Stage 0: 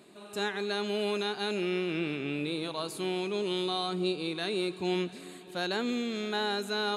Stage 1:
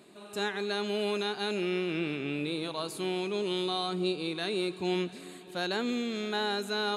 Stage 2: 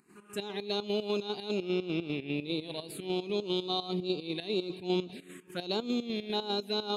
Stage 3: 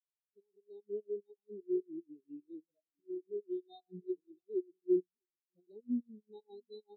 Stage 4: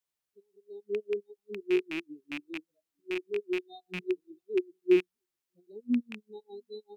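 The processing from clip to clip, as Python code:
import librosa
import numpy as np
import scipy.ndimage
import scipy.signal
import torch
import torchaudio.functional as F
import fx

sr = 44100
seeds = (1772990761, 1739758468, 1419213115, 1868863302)

y1 = x
y2 = fx.env_phaser(y1, sr, low_hz=580.0, high_hz=1800.0, full_db=-27.5)
y2 = fx.volume_shaper(y2, sr, bpm=150, per_beat=2, depth_db=-13, release_ms=93.0, shape='slow start')
y2 = y2 * librosa.db_to_amplitude(2.0)
y3 = y2 + 10.0 ** (-15.0 / 20.0) * np.pad(y2, (int(653 * sr / 1000.0), 0))[:len(y2)]
y3 = fx.spectral_expand(y3, sr, expansion=4.0)
y3 = y3 * librosa.db_to_amplitude(-2.5)
y4 = fx.rattle_buzz(y3, sr, strikes_db=-53.0, level_db=-32.0)
y4 = y4 * librosa.db_to_amplitude(7.0)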